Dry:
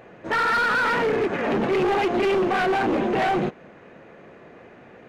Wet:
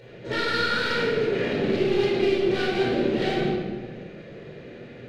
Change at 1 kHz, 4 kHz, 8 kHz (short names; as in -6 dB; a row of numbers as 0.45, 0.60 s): -8.5 dB, +4.0 dB, n/a